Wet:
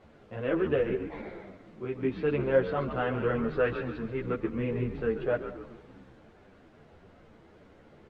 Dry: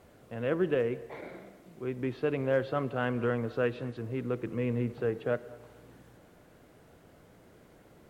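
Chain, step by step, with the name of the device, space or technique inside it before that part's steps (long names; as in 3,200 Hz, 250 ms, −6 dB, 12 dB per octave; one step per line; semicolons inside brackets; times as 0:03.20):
0:03.50–0:04.42: parametric band 1,600 Hz +5 dB 0.79 octaves
echo with shifted repeats 137 ms, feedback 39%, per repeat −86 Hz, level −9 dB
string-machine ensemble chorus (string-ensemble chorus; low-pass filter 4,000 Hz 12 dB per octave)
level +4.5 dB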